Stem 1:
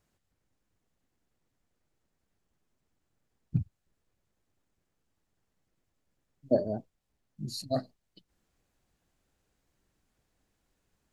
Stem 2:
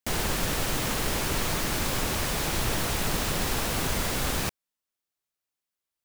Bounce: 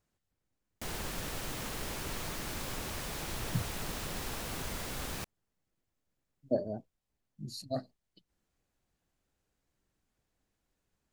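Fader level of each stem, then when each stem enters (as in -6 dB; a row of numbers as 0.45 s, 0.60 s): -5.0 dB, -11.0 dB; 0.00 s, 0.75 s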